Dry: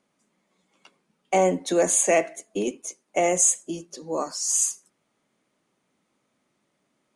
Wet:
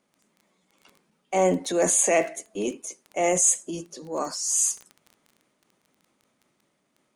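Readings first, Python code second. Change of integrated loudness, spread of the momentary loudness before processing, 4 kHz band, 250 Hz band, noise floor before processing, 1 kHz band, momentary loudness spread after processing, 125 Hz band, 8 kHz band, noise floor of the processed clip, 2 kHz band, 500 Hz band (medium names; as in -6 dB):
-0.5 dB, 15 LU, -0.5 dB, -0.5 dB, -74 dBFS, -1.5 dB, 15 LU, +0.5 dB, 0.0 dB, -73 dBFS, -1.0 dB, -1.0 dB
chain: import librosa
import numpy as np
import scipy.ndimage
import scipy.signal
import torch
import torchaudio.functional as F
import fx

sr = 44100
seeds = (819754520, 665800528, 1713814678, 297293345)

y = fx.high_shelf(x, sr, hz=11000.0, db=3.0)
y = fx.dmg_crackle(y, sr, seeds[0], per_s=11.0, level_db=-35.0)
y = fx.transient(y, sr, attack_db=-6, sustain_db=4)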